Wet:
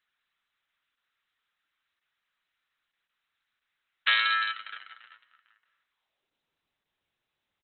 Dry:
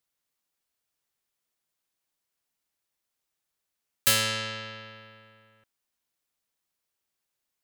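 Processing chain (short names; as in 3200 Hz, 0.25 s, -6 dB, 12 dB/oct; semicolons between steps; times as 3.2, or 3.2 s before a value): 4.14–4.89 dynamic EQ 520 Hz, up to -4 dB, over -49 dBFS, Q 6.7; high-pass sweep 1400 Hz -> 79 Hz, 5.88–6.66; echo 0.199 s -22 dB; gain +3.5 dB; Opus 6 kbps 48000 Hz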